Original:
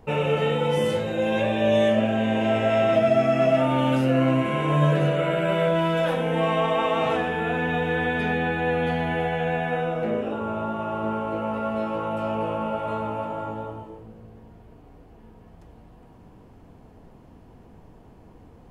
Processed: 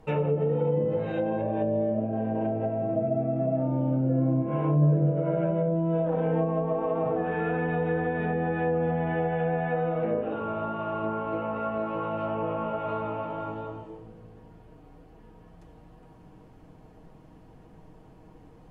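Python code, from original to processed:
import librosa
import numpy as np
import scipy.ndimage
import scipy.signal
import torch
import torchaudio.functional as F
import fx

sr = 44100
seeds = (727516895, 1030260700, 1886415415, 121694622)

y = fx.env_lowpass_down(x, sr, base_hz=460.0, full_db=-18.0)
y = y + 0.43 * np.pad(y, (int(6.4 * sr / 1000.0), 0))[:len(y)]
y = y * 10.0 ** (-3.0 / 20.0)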